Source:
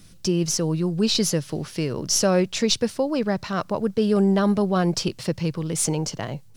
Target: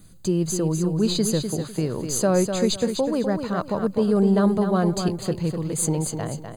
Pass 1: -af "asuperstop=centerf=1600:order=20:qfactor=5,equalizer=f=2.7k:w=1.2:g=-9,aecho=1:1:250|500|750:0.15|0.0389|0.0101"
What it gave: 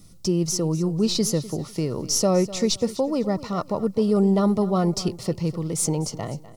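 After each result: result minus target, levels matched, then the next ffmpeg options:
echo-to-direct -9.5 dB; 2000 Hz band -5.0 dB
-af "asuperstop=centerf=1600:order=20:qfactor=5,equalizer=f=2.7k:w=1.2:g=-9,aecho=1:1:250|500|750:0.447|0.116|0.0302"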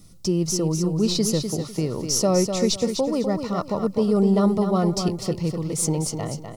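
2000 Hz band -5.0 dB
-af "asuperstop=centerf=5500:order=20:qfactor=5,equalizer=f=2.7k:w=1.2:g=-9,aecho=1:1:250|500|750:0.447|0.116|0.0302"

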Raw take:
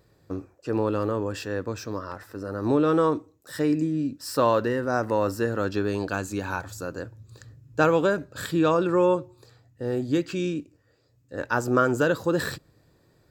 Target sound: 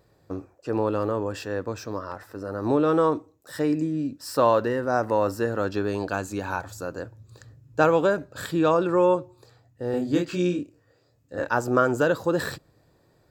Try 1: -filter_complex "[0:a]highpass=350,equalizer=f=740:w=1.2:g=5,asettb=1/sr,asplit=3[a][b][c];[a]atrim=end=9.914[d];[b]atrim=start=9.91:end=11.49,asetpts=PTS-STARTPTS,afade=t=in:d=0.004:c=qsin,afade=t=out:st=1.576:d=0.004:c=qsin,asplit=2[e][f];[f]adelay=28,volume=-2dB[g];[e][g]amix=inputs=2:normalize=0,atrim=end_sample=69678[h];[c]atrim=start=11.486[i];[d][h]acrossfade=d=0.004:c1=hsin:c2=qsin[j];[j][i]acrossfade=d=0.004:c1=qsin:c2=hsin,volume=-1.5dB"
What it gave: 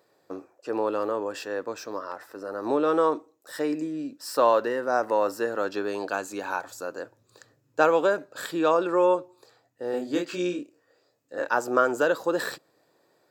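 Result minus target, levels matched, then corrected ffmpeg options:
250 Hz band -3.0 dB
-filter_complex "[0:a]equalizer=f=740:w=1.2:g=5,asettb=1/sr,asplit=3[a][b][c];[a]atrim=end=9.914[d];[b]atrim=start=9.91:end=11.49,asetpts=PTS-STARTPTS,afade=t=in:d=0.004:c=qsin,afade=t=out:st=1.576:d=0.004:c=qsin,asplit=2[e][f];[f]adelay=28,volume=-2dB[g];[e][g]amix=inputs=2:normalize=0,atrim=end_sample=69678[h];[c]atrim=start=11.486[i];[d][h]acrossfade=d=0.004:c1=hsin:c2=qsin[j];[j][i]acrossfade=d=0.004:c1=qsin:c2=hsin,volume=-1.5dB"

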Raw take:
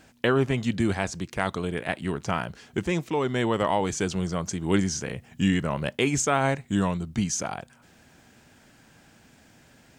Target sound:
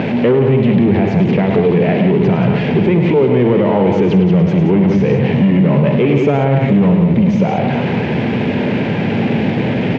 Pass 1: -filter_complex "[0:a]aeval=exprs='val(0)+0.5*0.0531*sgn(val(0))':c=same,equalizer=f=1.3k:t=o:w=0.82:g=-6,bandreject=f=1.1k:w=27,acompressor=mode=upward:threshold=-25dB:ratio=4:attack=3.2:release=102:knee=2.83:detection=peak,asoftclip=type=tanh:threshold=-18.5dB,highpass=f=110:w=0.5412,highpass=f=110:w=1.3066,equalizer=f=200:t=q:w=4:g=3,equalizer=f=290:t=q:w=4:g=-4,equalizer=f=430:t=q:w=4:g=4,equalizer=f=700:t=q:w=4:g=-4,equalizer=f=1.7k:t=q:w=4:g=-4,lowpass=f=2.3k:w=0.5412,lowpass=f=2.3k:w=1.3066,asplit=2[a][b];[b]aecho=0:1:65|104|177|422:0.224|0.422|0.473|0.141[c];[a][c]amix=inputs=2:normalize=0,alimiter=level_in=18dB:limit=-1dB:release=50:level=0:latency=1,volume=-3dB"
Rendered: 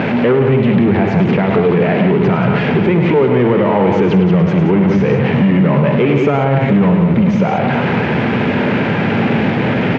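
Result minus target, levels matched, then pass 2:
1000 Hz band +3.0 dB
-filter_complex "[0:a]aeval=exprs='val(0)+0.5*0.0531*sgn(val(0))':c=same,equalizer=f=1.3k:t=o:w=0.82:g=-17,bandreject=f=1.1k:w=27,acompressor=mode=upward:threshold=-25dB:ratio=4:attack=3.2:release=102:knee=2.83:detection=peak,asoftclip=type=tanh:threshold=-18.5dB,highpass=f=110:w=0.5412,highpass=f=110:w=1.3066,equalizer=f=200:t=q:w=4:g=3,equalizer=f=290:t=q:w=4:g=-4,equalizer=f=430:t=q:w=4:g=4,equalizer=f=700:t=q:w=4:g=-4,equalizer=f=1.7k:t=q:w=4:g=-4,lowpass=f=2.3k:w=0.5412,lowpass=f=2.3k:w=1.3066,asplit=2[a][b];[b]aecho=0:1:65|104|177|422:0.224|0.422|0.473|0.141[c];[a][c]amix=inputs=2:normalize=0,alimiter=level_in=18dB:limit=-1dB:release=50:level=0:latency=1,volume=-3dB"

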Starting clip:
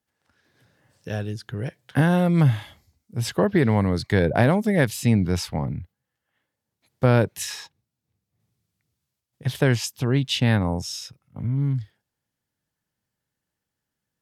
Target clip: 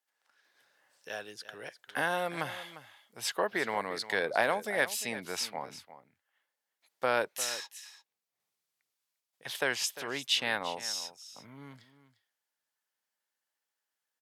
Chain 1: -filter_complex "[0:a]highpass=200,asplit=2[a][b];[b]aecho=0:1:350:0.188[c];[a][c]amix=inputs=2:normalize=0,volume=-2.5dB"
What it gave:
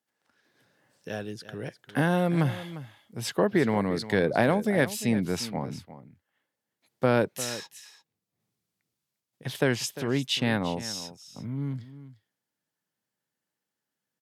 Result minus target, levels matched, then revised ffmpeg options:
250 Hz band +11.5 dB
-filter_complex "[0:a]highpass=720,asplit=2[a][b];[b]aecho=0:1:350:0.188[c];[a][c]amix=inputs=2:normalize=0,volume=-2.5dB"

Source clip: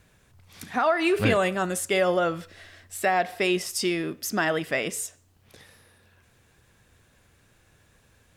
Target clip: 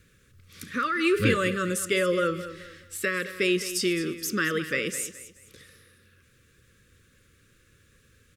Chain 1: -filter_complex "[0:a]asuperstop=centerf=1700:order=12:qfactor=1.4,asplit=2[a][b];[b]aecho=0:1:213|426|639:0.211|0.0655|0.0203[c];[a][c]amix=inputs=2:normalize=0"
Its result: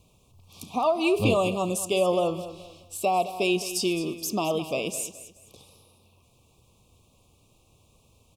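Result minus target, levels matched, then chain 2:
2000 Hz band -7.5 dB
-filter_complex "[0:a]asuperstop=centerf=790:order=12:qfactor=1.4,asplit=2[a][b];[b]aecho=0:1:213|426|639:0.211|0.0655|0.0203[c];[a][c]amix=inputs=2:normalize=0"

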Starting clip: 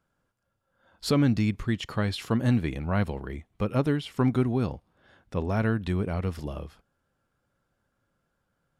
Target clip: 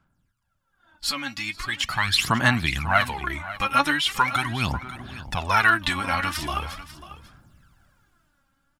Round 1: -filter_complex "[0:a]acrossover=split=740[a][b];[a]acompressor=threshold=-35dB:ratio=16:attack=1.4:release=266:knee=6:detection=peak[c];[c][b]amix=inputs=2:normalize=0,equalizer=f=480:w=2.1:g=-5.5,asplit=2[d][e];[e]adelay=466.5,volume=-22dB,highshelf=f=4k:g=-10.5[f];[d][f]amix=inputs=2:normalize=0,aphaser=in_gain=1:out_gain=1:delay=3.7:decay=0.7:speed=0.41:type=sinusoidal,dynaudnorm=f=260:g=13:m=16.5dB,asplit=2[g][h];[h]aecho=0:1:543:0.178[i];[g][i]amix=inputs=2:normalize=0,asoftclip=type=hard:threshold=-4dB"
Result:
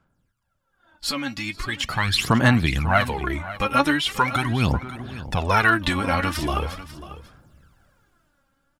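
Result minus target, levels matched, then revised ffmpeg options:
compressor: peak gain reduction -7 dB; 500 Hz band +5.5 dB
-filter_complex "[0:a]acrossover=split=740[a][b];[a]acompressor=threshold=-42.5dB:ratio=16:attack=1.4:release=266:knee=6:detection=peak[c];[c][b]amix=inputs=2:normalize=0,equalizer=f=480:w=2.1:g=-15,asplit=2[d][e];[e]adelay=466.5,volume=-22dB,highshelf=f=4k:g=-10.5[f];[d][f]amix=inputs=2:normalize=0,aphaser=in_gain=1:out_gain=1:delay=3.7:decay=0.7:speed=0.41:type=sinusoidal,dynaudnorm=f=260:g=13:m=16.5dB,asplit=2[g][h];[h]aecho=0:1:543:0.178[i];[g][i]amix=inputs=2:normalize=0,asoftclip=type=hard:threshold=-4dB"

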